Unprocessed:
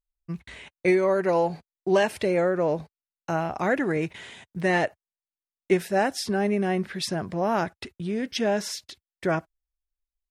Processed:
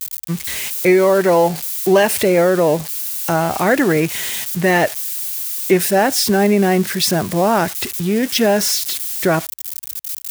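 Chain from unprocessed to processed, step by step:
spike at every zero crossing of −26 dBFS
high-pass filter 61 Hz
in parallel at +2 dB: brickwall limiter −18 dBFS, peak gain reduction 9.5 dB
on the sum: level +4 dB

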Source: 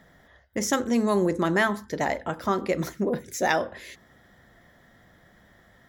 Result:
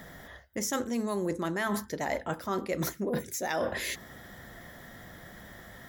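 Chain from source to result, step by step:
high-shelf EQ 8,300 Hz +10.5 dB
reversed playback
downward compressor 12 to 1, threshold −36 dBFS, peak gain reduction 19 dB
reversed playback
level +8 dB

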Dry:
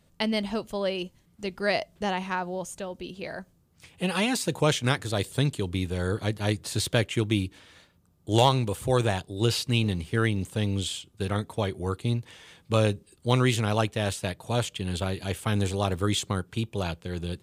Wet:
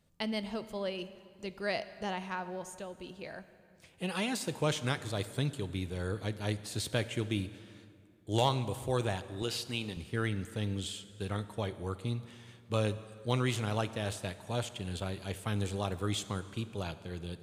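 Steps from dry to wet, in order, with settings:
0:09.42–0:09.97: high-pass filter 310 Hz 6 dB per octave
dense smooth reverb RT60 2.4 s, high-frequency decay 0.7×, DRR 12.5 dB
level −8 dB

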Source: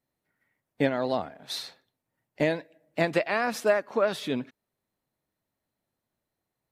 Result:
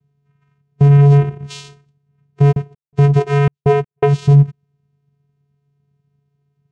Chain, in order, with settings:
0:00.89–0:01.29: comb filter 4.1 ms, depth 70%
channel vocoder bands 4, square 142 Hz
low shelf with overshoot 410 Hz +6.5 dB, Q 3
0:02.51–0:04.19: gate pattern "xxx.x.x." 82 BPM −60 dB
boost into a limiter +14.5 dB
level −1 dB

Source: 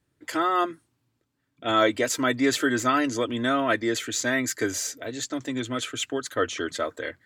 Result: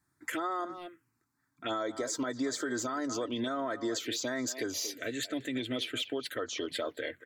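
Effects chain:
low-shelf EQ 180 Hz −12 dB
far-end echo of a speakerphone 230 ms, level −15 dB
phaser swept by the level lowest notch 500 Hz, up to 2,700 Hz, full sweep at −22.5 dBFS
downward compressor 10 to 1, threshold −31 dBFS, peak gain reduction 13 dB
brickwall limiter −27.5 dBFS, peak gain reduction 6.5 dB
level +3 dB

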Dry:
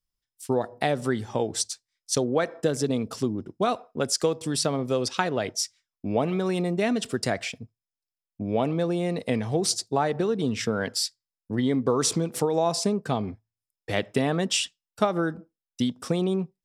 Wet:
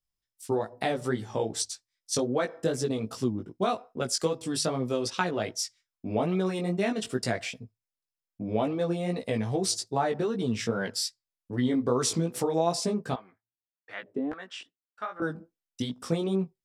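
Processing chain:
0:13.14–0:15.22: auto-filter band-pass square 1.7 Hz 330–1,500 Hz
chorus effect 2.5 Hz, delay 15.5 ms, depth 3.4 ms

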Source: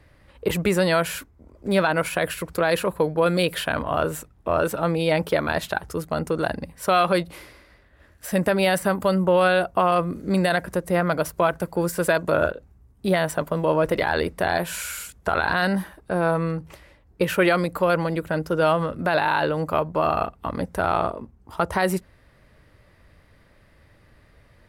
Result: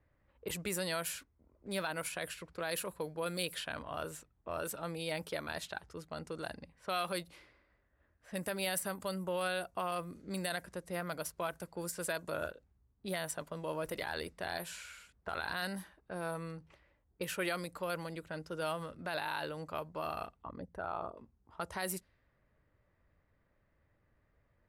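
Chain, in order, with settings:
0:20.42–0:21.17: spectral envelope exaggerated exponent 1.5
low-pass that shuts in the quiet parts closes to 1,400 Hz, open at −17.5 dBFS
first-order pre-emphasis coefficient 0.8
level −4.5 dB

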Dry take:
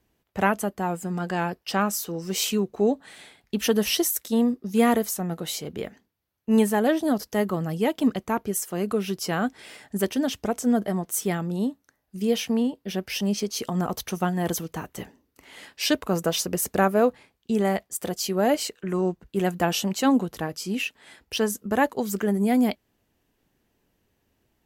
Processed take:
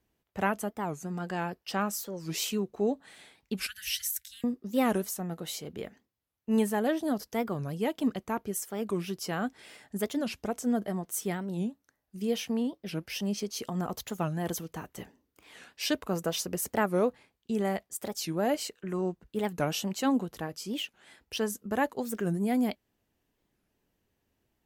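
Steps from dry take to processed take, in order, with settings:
0:03.67–0:04.44: Chebyshev band-stop filter 120–1,500 Hz, order 5
wow of a warped record 45 rpm, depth 250 cents
level −6.5 dB

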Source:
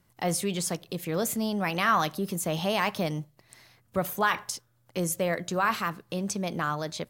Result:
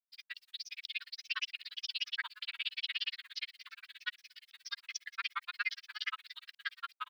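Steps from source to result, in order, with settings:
fade-out on the ending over 1.34 s
Butterworth high-pass 1,700 Hz 36 dB per octave
high-shelf EQ 3,900 Hz +11.5 dB
comb filter 2.7 ms, depth 90%
reversed playback
downward compressor 5 to 1, threshold −37 dBFS, peak gain reduction 19.5 dB
reversed playback
brickwall limiter −31.5 dBFS, peak gain reduction 10 dB
downsampling to 11,025 Hz
background noise blue −77 dBFS
on a send: feedback echo with a long and a short gap by turns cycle 845 ms, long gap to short 1.5 to 1, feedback 48%, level −21 dB
on the sum: granular cloud 45 ms, grains 17 per second, spray 563 ms, pitch spread up and down by 3 semitones
level +10.5 dB

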